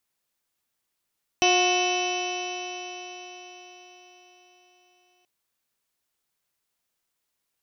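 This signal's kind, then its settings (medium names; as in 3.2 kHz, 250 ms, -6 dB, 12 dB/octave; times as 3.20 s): stretched partials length 3.83 s, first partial 359 Hz, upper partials 2/-9/-17/-16/-12/0.5/-1.5/-16/-12/-18/-18/-10.5/-5.5 dB, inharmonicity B 0.0018, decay 4.79 s, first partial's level -23 dB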